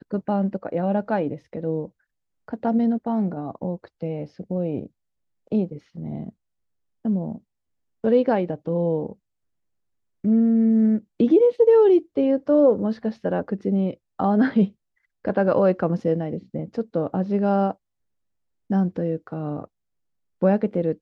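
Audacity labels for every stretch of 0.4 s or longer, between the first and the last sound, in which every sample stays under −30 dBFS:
1.850000	2.480000	silence
4.860000	5.520000	silence
6.290000	7.050000	silence
7.350000	8.040000	silence
9.120000	10.250000	silence
14.660000	15.250000	silence
17.720000	18.700000	silence
19.640000	20.420000	silence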